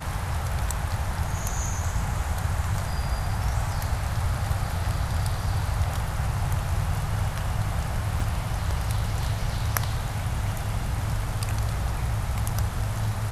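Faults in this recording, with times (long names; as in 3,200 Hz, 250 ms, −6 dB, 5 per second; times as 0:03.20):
0:08.20: drop-out 3.5 ms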